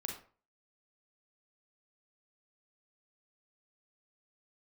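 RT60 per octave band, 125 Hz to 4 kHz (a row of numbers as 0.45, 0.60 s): 0.45, 0.40, 0.40, 0.40, 0.35, 0.25 s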